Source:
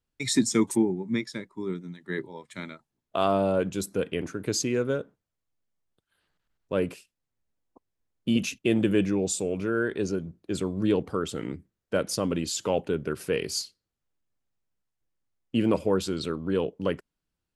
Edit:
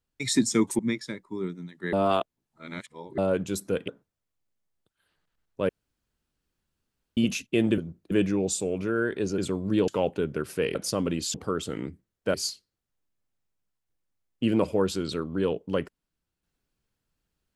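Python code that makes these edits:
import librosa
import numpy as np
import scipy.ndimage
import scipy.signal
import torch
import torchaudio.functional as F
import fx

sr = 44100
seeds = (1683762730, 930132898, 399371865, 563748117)

y = fx.edit(x, sr, fx.cut(start_s=0.79, length_s=0.26),
    fx.reverse_span(start_s=2.19, length_s=1.25),
    fx.cut(start_s=4.14, length_s=0.86),
    fx.room_tone_fill(start_s=6.81, length_s=1.48),
    fx.move(start_s=10.17, length_s=0.33, to_s=8.9),
    fx.swap(start_s=11.0, length_s=1.0, other_s=12.59, other_length_s=0.87), tone=tone)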